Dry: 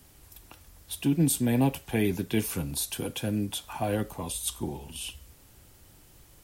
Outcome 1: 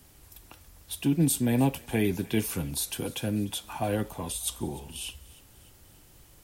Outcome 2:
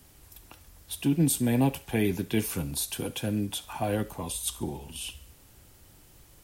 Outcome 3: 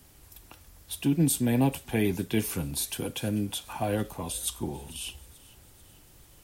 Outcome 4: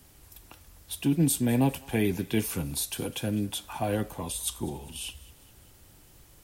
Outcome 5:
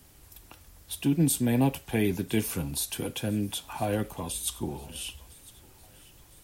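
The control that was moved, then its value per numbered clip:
feedback echo with a high-pass in the loop, delay time: 299, 70, 441, 202, 1,006 milliseconds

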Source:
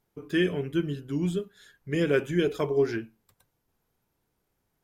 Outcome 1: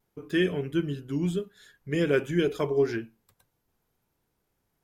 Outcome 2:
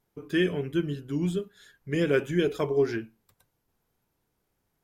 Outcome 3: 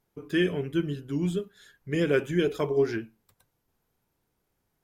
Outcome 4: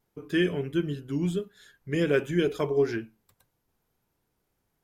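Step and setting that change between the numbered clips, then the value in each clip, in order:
pitch vibrato, speed: 0.72, 5.5, 11, 1.5 Hertz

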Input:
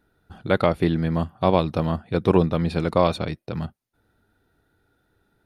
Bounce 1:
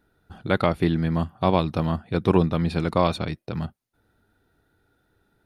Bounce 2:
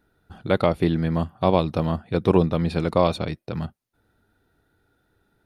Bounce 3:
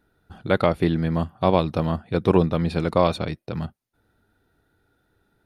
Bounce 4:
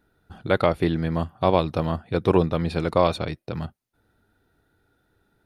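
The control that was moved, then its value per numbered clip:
dynamic equaliser, frequency: 520, 1,600, 8,400, 200 Hertz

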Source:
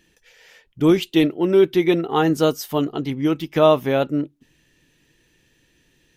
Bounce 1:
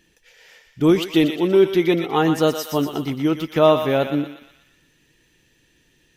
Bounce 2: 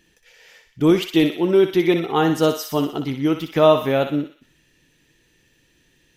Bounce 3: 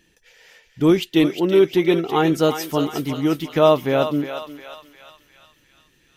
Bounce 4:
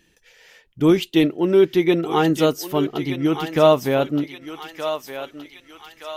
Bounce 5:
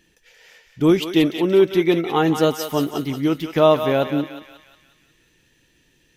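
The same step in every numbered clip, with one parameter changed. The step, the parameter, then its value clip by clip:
feedback echo with a high-pass in the loop, delay time: 120, 61, 356, 1,221, 180 milliseconds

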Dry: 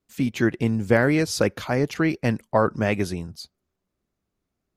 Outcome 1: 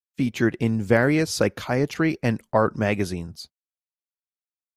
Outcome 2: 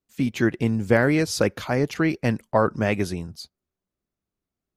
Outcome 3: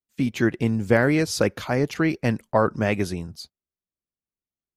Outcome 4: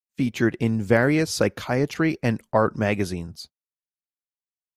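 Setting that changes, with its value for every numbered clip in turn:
noise gate, range: −59, −7, −20, −39 decibels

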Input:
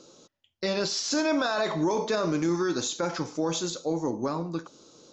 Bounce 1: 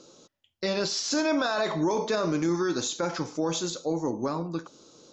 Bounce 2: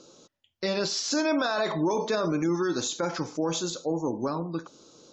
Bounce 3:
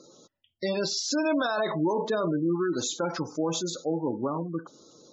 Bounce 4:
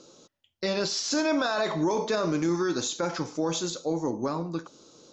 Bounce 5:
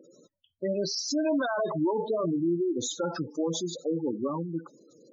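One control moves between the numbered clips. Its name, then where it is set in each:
gate on every frequency bin, under each frame's peak: −50, −35, −20, −60, −10 decibels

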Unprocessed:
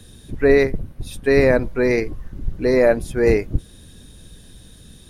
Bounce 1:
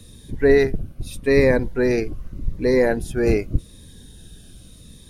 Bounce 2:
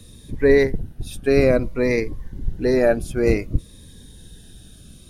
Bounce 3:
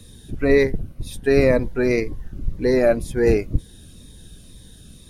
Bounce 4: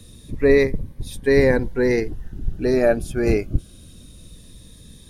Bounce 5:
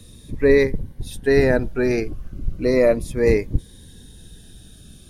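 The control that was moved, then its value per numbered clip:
phaser whose notches keep moving one way, speed: 0.83, 0.57, 2, 0.23, 0.35 Hertz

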